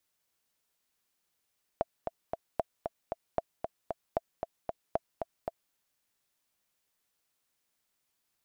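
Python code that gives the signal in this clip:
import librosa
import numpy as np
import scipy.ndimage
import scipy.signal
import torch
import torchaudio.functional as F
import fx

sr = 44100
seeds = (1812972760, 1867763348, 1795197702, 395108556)

y = fx.click_track(sr, bpm=229, beats=3, bars=5, hz=666.0, accent_db=5.5, level_db=-14.5)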